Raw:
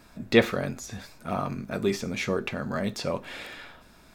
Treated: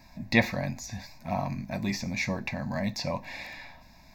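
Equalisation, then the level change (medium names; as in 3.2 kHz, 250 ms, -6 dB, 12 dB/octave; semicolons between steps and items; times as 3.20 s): Butterworth band-stop 1.2 kHz, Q 6.8; static phaser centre 2.1 kHz, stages 8; +2.5 dB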